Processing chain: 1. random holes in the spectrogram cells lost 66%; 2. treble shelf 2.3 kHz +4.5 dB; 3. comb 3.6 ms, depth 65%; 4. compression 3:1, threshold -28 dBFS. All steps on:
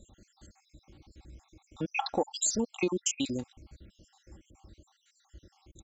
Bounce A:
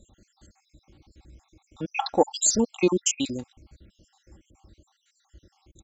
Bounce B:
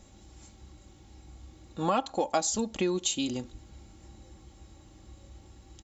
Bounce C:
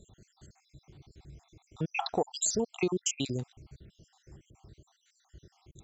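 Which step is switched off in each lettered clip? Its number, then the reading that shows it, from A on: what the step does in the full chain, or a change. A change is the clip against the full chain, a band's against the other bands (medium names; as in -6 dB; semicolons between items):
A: 4, 2 kHz band -4.0 dB; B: 1, 2 kHz band -4.5 dB; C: 3, 125 Hz band +5.5 dB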